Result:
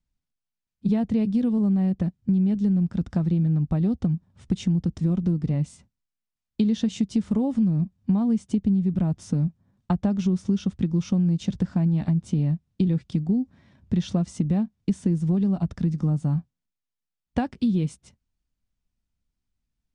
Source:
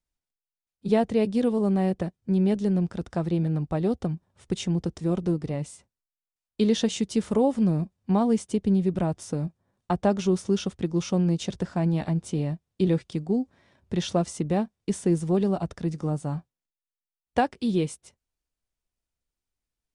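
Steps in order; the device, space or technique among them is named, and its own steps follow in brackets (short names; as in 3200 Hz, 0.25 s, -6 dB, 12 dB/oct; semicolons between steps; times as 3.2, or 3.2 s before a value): jukebox (LPF 7500 Hz 12 dB/oct; resonant low shelf 300 Hz +9 dB, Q 1.5; compressor 5:1, threshold -20 dBFS, peak gain reduction 11.5 dB)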